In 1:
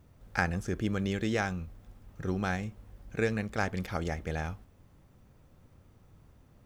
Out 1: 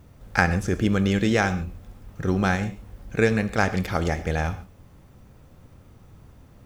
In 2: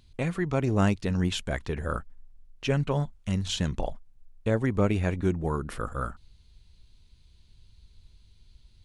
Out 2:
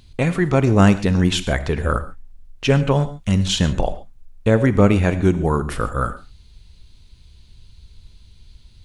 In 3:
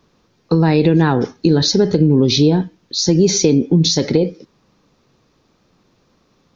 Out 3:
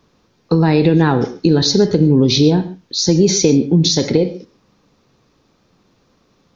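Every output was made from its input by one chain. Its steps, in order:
non-linear reverb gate 0.16 s flat, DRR 12 dB; normalise peaks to -1.5 dBFS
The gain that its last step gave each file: +9.0, +10.0, +0.5 dB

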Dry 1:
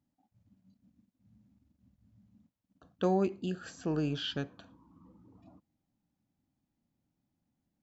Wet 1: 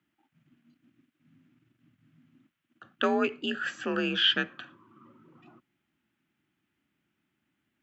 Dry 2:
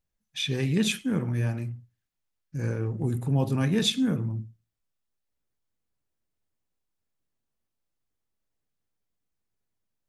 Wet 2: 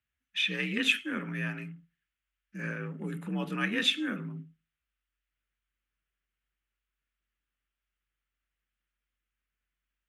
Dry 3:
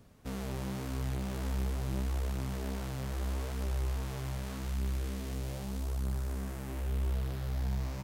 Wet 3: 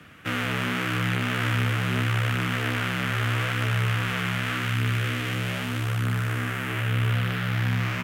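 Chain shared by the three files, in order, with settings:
frequency shift +48 Hz; band shelf 2000 Hz +15.5 dB; normalise peaks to -12 dBFS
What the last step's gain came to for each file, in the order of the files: +1.0, -9.0, +7.0 dB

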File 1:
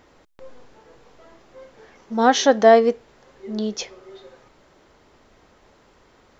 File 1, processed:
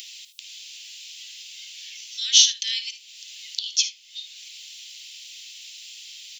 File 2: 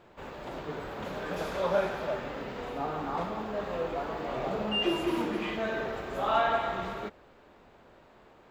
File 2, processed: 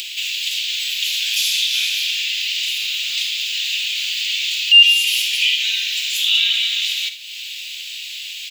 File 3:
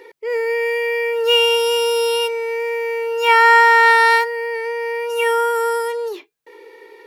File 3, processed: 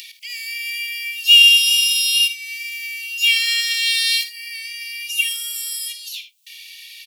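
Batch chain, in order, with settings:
steep high-pass 2700 Hz 48 dB/oct; early reflections 54 ms -13 dB, 77 ms -16.5 dB; in parallel at +2 dB: upward compressor, threshold -31 dBFS; on the sum: normalise peaks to -1.5 dBFS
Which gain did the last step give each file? +3.5, +17.5, +2.5 dB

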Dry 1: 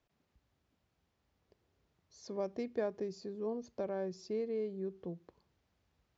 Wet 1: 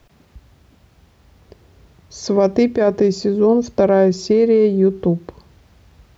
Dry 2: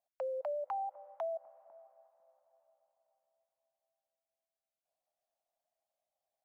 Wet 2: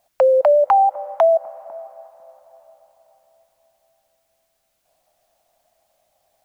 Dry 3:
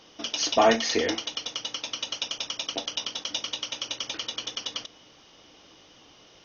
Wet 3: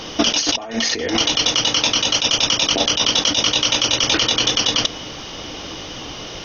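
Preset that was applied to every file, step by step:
low shelf 120 Hz +8.5 dB; negative-ratio compressor -35 dBFS, ratio -1; match loudness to -16 LUFS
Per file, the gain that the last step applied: +23.5, +23.5, +16.0 dB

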